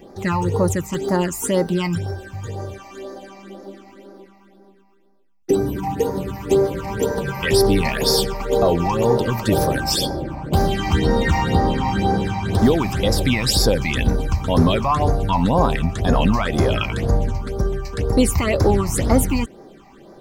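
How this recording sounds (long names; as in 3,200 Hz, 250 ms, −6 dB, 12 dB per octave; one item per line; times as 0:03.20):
phaser sweep stages 8, 2 Hz, lowest notch 440–2,900 Hz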